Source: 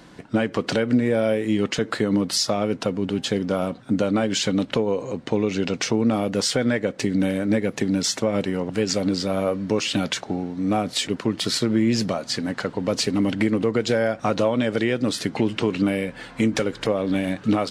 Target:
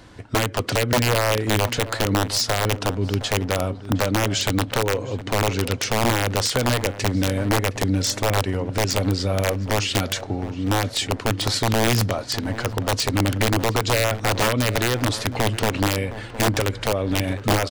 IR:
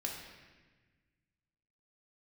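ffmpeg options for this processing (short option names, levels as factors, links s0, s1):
-filter_complex "[0:a]lowshelf=f=130:t=q:w=3:g=7,acontrast=24,aeval=exprs='(mod(2.51*val(0)+1,2)-1)/2.51':c=same,asplit=2[s0][s1];[s1]adelay=714,lowpass=f=1500:p=1,volume=0.211,asplit=2[s2][s3];[s3]adelay=714,lowpass=f=1500:p=1,volume=0.43,asplit=2[s4][s5];[s5]adelay=714,lowpass=f=1500:p=1,volume=0.43,asplit=2[s6][s7];[s7]adelay=714,lowpass=f=1500:p=1,volume=0.43[s8];[s2][s4][s6][s8]amix=inputs=4:normalize=0[s9];[s0][s9]amix=inputs=2:normalize=0,volume=0.596"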